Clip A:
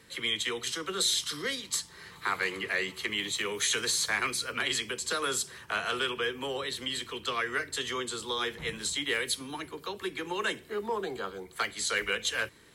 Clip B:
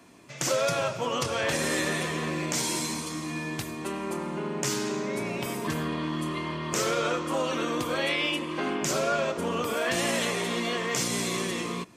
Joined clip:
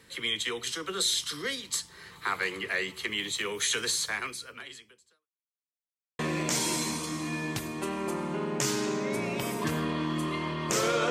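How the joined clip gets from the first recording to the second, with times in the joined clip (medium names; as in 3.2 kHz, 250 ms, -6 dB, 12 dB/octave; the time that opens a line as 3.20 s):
clip A
3.91–5.28 s: fade out quadratic
5.28–6.19 s: mute
6.19 s: go over to clip B from 2.22 s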